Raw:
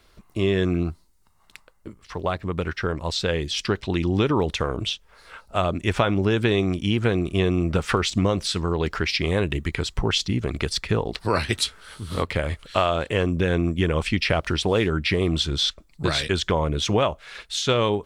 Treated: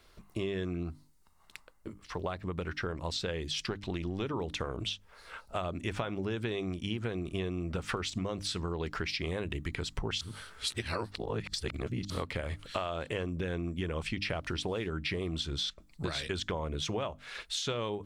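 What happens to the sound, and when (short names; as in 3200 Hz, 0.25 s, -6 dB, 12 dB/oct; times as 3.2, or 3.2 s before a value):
3.66–4.22 half-wave gain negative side -3 dB
10.21–12.1 reverse
whole clip: notches 50/100/150/200/250/300 Hz; compressor 4:1, threshold -29 dBFS; gain -3.5 dB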